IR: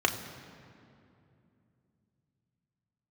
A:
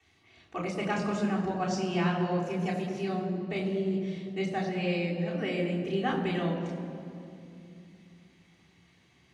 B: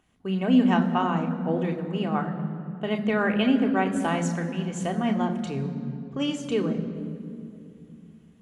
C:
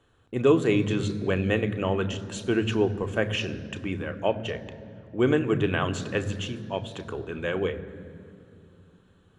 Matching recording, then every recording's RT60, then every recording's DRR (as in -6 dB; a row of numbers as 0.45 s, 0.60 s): B; 2.7 s, 2.7 s, 2.7 s; -7.0 dB, 3.0 dB, 8.0 dB